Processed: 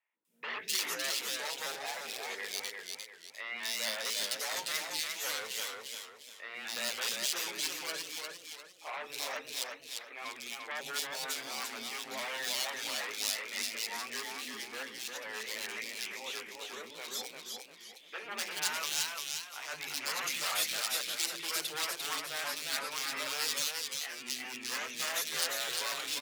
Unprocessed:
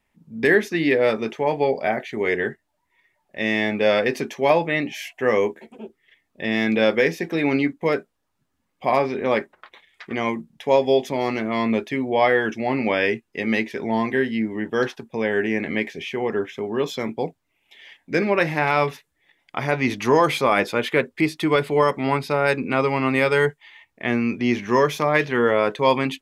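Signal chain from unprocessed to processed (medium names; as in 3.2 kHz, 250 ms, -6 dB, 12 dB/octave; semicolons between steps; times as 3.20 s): sawtooth pitch modulation +2 st, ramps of 277 ms; wavefolder -18 dBFS; differentiator; three bands offset in time mids, lows, highs 130/250 ms, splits 350/2500 Hz; modulated delay 349 ms, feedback 36%, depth 107 cents, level -4 dB; trim +2.5 dB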